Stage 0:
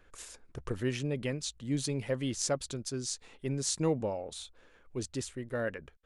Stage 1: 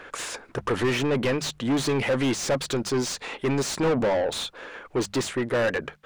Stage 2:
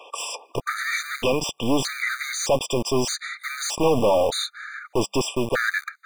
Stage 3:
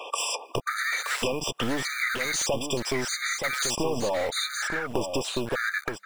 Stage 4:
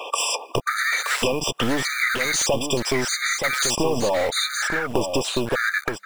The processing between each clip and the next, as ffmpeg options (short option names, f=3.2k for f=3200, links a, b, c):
-filter_complex "[0:a]asplit=2[a][b];[b]highpass=f=720:p=1,volume=33dB,asoftclip=type=tanh:threshold=-14.5dB[c];[a][c]amix=inputs=2:normalize=0,lowpass=f=1.9k:p=1,volume=-6dB,bandreject=f=50:t=h:w=6,bandreject=f=100:t=h:w=6,bandreject=f=150:t=h:w=6,bandreject=f=200:t=h:w=6"
-filter_complex "[0:a]acrossover=split=490|980[a][b][c];[a]acrusher=bits=3:dc=4:mix=0:aa=0.000001[d];[d][b][c]amix=inputs=3:normalize=0,afftfilt=real='re*gt(sin(2*PI*0.81*pts/sr)*(1-2*mod(floor(b*sr/1024/1200),2)),0)':imag='im*gt(sin(2*PI*0.81*pts/sr)*(1-2*mod(floor(b*sr/1024/1200),2)),0)':win_size=1024:overlap=0.75,volume=6.5dB"
-af "acompressor=threshold=-32dB:ratio=6,aecho=1:1:923:0.447,volume=6.5dB"
-af "acrusher=bits=8:mode=log:mix=0:aa=0.000001,volume=5.5dB"